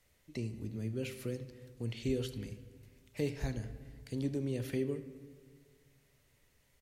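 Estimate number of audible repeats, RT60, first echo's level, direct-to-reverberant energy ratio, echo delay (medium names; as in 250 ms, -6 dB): 1, 1.7 s, -19.0 dB, 10.0 dB, 74 ms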